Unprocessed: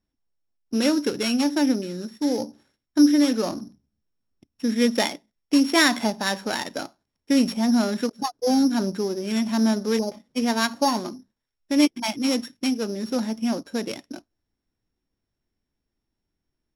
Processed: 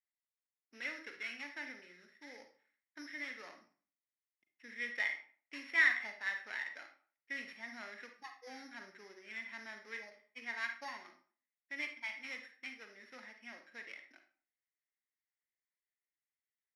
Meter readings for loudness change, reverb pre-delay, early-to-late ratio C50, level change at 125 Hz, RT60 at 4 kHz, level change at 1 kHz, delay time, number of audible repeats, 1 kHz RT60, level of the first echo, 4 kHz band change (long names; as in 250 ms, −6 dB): −16.5 dB, 37 ms, 8.0 dB, can't be measured, 0.30 s, −22.5 dB, no echo audible, no echo audible, 0.45 s, no echo audible, −22.0 dB